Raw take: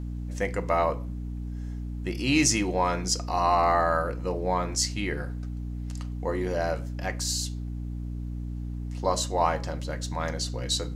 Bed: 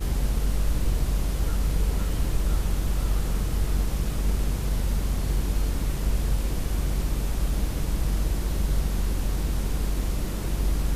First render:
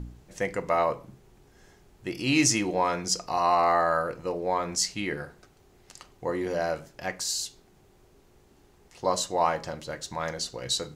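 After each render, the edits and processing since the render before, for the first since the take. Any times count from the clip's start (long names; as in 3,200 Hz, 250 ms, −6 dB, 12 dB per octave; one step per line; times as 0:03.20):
hum removal 60 Hz, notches 5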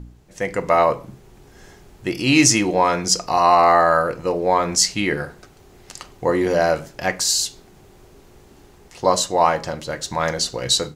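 automatic gain control gain up to 11 dB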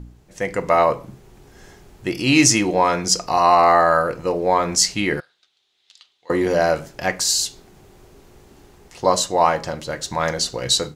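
0:05.20–0:06.30: resonant band-pass 3,600 Hz, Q 5.1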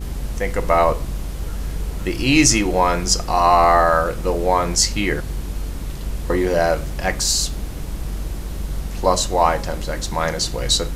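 mix in bed −1.5 dB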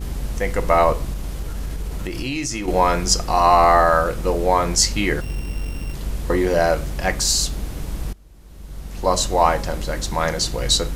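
0:01.13–0:02.68: downward compressor, threshold −22 dBFS
0:05.21–0:05.94: samples sorted by size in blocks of 16 samples
0:08.13–0:09.22: fade in quadratic, from −23 dB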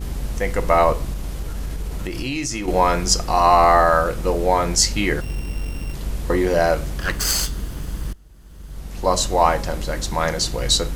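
0:04.46–0:04.98: notch filter 1,100 Hz, Q 11
0:06.98–0:08.76: lower of the sound and its delayed copy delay 0.63 ms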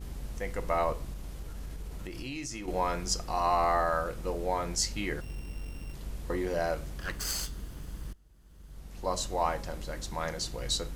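level −13 dB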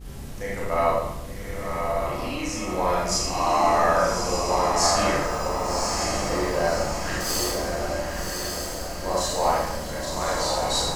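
feedback delay with all-pass diffusion 1,129 ms, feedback 54%, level −3 dB
four-comb reverb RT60 0.79 s, combs from 28 ms, DRR −6.5 dB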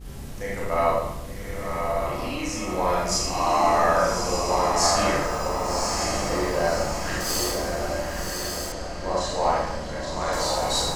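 0:08.72–0:10.33: high-frequency loss of the air 78 metres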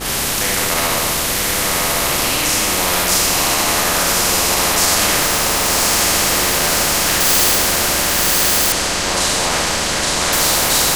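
boost into a limiter +11.5 dB
every bin compressed towards the loudest bin 4 to 1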